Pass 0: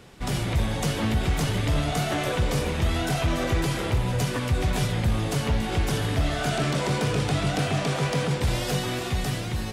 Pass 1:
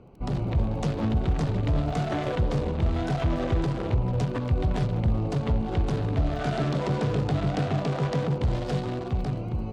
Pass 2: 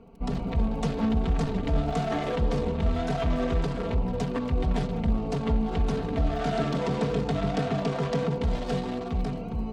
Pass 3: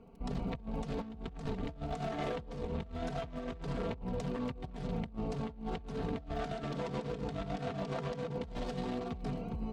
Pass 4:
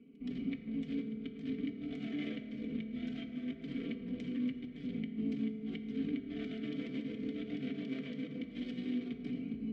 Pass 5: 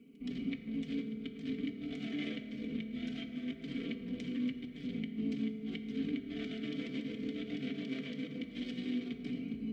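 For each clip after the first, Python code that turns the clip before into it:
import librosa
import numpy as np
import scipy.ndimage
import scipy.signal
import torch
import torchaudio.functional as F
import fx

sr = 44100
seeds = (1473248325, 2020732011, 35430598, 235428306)

y1 = fx.wiener(x, sr, points=25)
y1 = fx.air_absorb(y1, sr, metres=91.0)
y1 = fx.dmg_crackle(y1, sr, seeds[0], per_s=21.0, level_db=-45.0)
y2 = y1 + 0.77 * np.pad(y1, (int(4.4 * sr / 1000.0), 0))[:len(y1)]
y2 = F.gain(torch.from_numpy(y2), -1.5).numpy()
y3 = fx.over_compress(y2, sr, threshold_db=-29.0, ratio=-0.5)
y3 = F.gain(torch.from_numpy(y3), -8.5).numpy()
y4 = fx.vowel_filter(y3, sr, vowel='i')
y4 = fx.rev_fdn(y4, sr, rt60_s=3.1, lf_ratio=1.25, hf_ratio=0.4, size_ms=14.0, drr_db=5.5)
y4 = F.gain(torch.from_numpy(y4), 9.5).numpy()
y5 = fx.high_shelf(y4, sr, hz=3100.0, db=9.5)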